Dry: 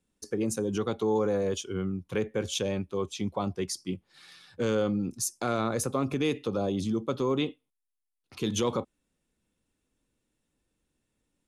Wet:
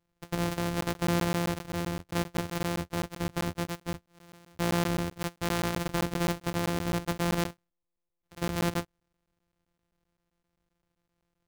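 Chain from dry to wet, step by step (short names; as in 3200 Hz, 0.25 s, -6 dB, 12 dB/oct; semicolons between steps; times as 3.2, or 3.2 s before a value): sample sorter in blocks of 256 samples; crackling interface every 0.13 s, samples 512, zero, from 0.81; gain -1 dB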